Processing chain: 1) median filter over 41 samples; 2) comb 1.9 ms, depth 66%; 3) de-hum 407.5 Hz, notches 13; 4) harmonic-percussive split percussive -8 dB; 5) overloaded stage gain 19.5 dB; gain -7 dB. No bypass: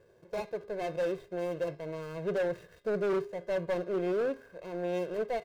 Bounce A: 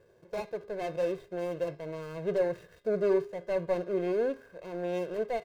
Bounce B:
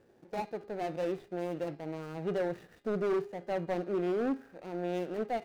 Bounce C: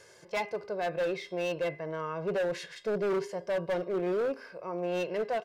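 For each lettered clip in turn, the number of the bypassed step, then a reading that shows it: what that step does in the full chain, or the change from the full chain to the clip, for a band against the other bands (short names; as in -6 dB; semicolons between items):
5, distortion -13 dB; 2, 2 kHz band -4.0 dB; 1, 4 kHz band +5.5 dB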